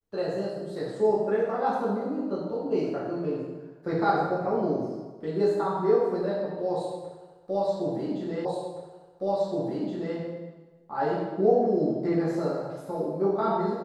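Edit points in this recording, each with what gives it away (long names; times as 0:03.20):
0:08.45: the same again, the last 1.72 s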